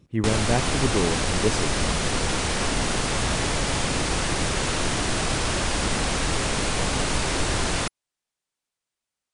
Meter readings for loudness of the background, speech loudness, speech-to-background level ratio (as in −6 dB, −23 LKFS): −24.5 LKFS, −28.0 LKFS, −3.5 dB